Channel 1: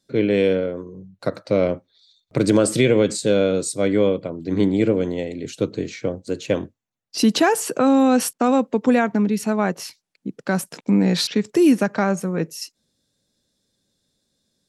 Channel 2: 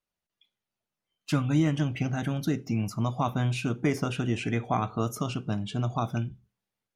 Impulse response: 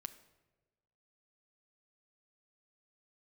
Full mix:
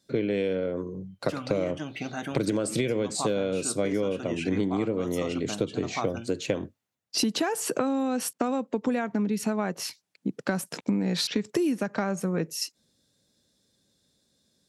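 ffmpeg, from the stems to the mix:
-filter_complex "[0:a]highpass=45,volume=1.5dB[a];[1:a]highpass=290,volume=0.5dB[b];[a][b]amix=inputs=2:normalize=0,acompressor=threshold=-23dB:ratio=10"

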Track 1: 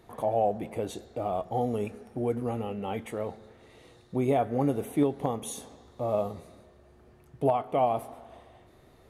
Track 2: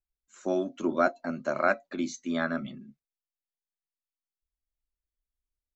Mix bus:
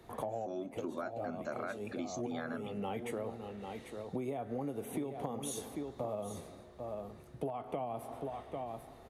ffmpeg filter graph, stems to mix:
-filter_complex "[0:a]acrossover=split=130|280[a][b][c];[a]acompressor=threshold=-49dB:ratio=4[d];[b]acompressor=threshold=-34dB:ratio=4[e];[c]acompressor=threshold=-28dB:ratio=4[f];[d][e][f]amix=inputs=3:normalize=0,volume=0dB,asplit=2[g][h];[h]volume=-10.5dB[i];[1:a]alimiter=limit=-19.5dB:level=0:latency=1:release=29,volume=-5.5dB,asplit=2[j][k];[k]apad=whole_len=401037[l];[g][l]sidechaincompress=threshold=-46dB:ratio=8:attack=5.9:release=207[m];[i]aecho=0:1:794:1[n];[m][j][n]amix=inputs=3:normalize=0,acompressor=threshold=-35dB:ratio=6"

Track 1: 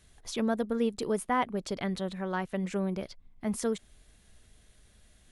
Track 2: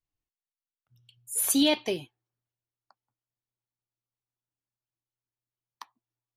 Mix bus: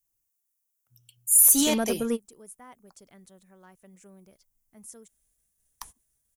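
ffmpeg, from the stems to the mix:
-filter_complex "[0:a]agate=range=-33dB:threshold=-55dB:ratio=3:detection=peak,adelay=1300,volume=2.5dB[a];[1:a]volume=0dB,asplit=2[b][c];[c]apad=whole_len=291651[d];[a][d]sidechaingate=range=-24dB:threshold=-52dB:ratio=16:detection=peak[e];[e][b]amix=inputs=2:normalize=0,asoftclip=type=tanh:threshold=-16dB,aexciter=amount=4.4:drive=7.9:freq=5.8k,alimiter=limit=-7.5dB:level=0:latency=1:release=71"

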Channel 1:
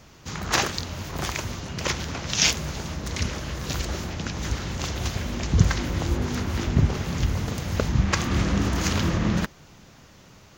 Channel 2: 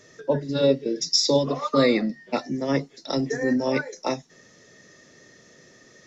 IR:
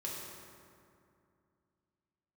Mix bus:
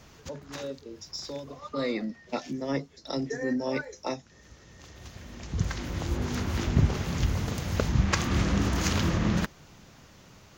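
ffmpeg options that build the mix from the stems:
-filter_complex "[0:a]volume=-2.5dB[a];[1:a]acontrast=73,volume=-12.5dB,afade=t=in:st=1.54:d=0.66:silence=0.281838,asplit=2[b][c];[c]apad=whole_len=466279[d];[a][d]sidechaincompress=threshold=-54dB:ratio=16:attack=16:release=1150[e];[e][b]amix=inputs=2:normalize=0"

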